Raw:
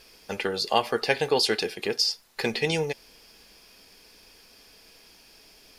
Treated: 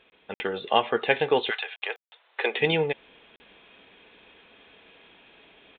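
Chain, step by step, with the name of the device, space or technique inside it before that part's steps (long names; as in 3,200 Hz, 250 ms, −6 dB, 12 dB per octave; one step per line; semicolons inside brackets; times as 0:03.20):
call with lost packets (high-pass filter 160 Hz 6 dB per octave; downsampling to 8,000 Hz; automatic gain control gain up to 7 dB; dropped packets bursts)
0:01.49–0:02.59: high-pass filter 870 Hz → 360 Hz 24 dB per octave
level −3 dB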